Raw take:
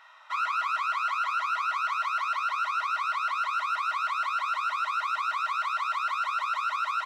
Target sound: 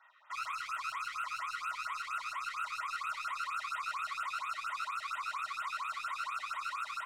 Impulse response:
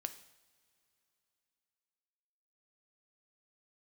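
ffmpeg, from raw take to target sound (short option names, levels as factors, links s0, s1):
-filter_complex "[0:a]adynamicsmooth=sensitivity=6.5:basefreq=2200,highshelf=f=2500:g=8,alimiter=limit=0.0841:level=0:latency=1,lowshelf=f=500:g=-7[s0];[1:a]atrim=start_sample=2205[s1];[s0][s1]afir=irnorm=-1:irlink=0,afftfilt=real='re*(1-between(b*sr/1024,720*pow(5500/720,0.5+0.5*sin(2*PI*4.3*pts/sr))/1.41,720*pow(5500/720,0.5+0.5*sin(2*PI*4.3*pts/sr))*1.41))':imag='im*(1-between(b*sr/1024,720*pow(5500/720,0.5+0.5*sin(2*PI*4.3*pts/sr))/1.41,720*pow(5500/720,0.5+0.5*sin(2*PI*4.3*pts/sr))*1.41))':win_size=1024:overlap=0.75,volume=0.531"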